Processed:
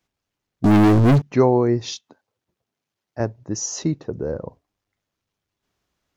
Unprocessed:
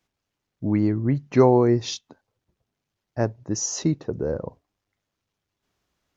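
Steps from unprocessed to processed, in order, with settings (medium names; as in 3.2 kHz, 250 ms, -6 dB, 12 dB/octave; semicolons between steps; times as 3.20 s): 0.64–1.22 s: waveshaping leveller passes 5; 1.92–3.20 s: high-pass 220 Hz 6 dB/octave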